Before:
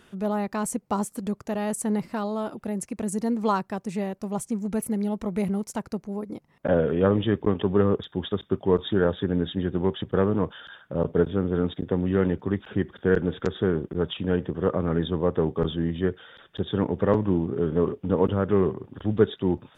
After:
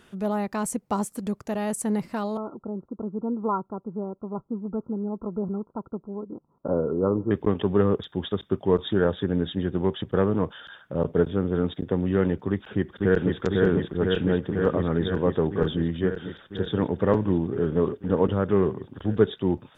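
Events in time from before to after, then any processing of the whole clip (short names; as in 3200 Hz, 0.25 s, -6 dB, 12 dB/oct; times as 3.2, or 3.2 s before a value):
2.37–7.31 rippled Chebyshev low-pass 1400 Hz, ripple 6 dB
12.5–13.38 echo throw 0.5 s, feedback 80%, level -2 dB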